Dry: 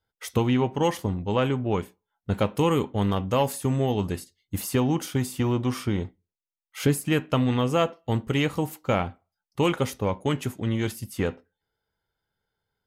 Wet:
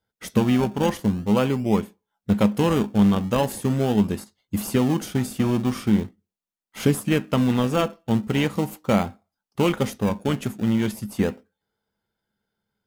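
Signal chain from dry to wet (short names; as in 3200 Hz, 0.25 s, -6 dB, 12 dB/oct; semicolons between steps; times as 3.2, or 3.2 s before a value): low shelf 68 Hz -11 dB; in parallel at -8 dB: decimation with a swept rate 30×, swing 100% 0.41 Hz; on the sum: bell 210 Hz +13.5 dB 0.2 oct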